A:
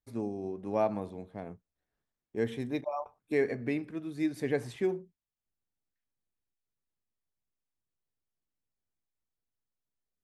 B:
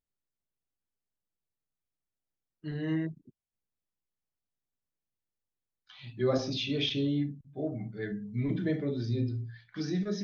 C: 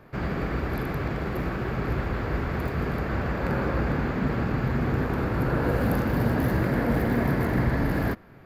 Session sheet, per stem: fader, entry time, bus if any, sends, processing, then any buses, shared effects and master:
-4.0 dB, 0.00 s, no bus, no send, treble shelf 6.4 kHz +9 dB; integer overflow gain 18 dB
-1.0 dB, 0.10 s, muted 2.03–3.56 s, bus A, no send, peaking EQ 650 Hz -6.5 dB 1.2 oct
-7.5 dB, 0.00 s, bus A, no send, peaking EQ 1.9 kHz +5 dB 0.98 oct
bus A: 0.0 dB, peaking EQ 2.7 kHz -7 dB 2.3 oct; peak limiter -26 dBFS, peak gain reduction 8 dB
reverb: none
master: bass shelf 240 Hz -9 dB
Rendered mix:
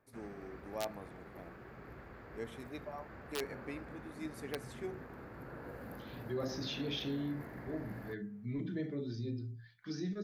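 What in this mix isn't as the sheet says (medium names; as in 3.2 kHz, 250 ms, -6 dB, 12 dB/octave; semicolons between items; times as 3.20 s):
stem A -4.0 dB -> -10.0 dB; stem C -7.5 dB -> -19.0 dB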